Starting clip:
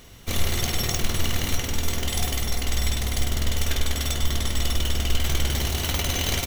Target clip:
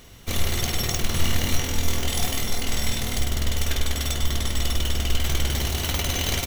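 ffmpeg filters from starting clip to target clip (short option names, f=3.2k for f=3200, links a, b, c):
-filter_complex "[0:a]asettb=1/sr,asplit=3[a][b][c];[a]atrim=end=1.104[d];[b]atrim=start=1.1:end=3.19,asetpts=PTS-STARTPTS,afade=t=in:d=0.004:c=qsin,afade=t=out:st=2.086:d=0.004:c=qsin,asplit=2[e][f];[f]adelay=23,volume=-4.5dB[g];[e][g]amix=inputs=2:normalize=0,atrim=end_sample=92169[h];[c]atrim=start=3.186[i];[d][h]acrossfade=d=0.004:c1=hsin:c2=qsin[j];[j][i]acrossfade=d=0.004:c1=qsin:c2=hsin"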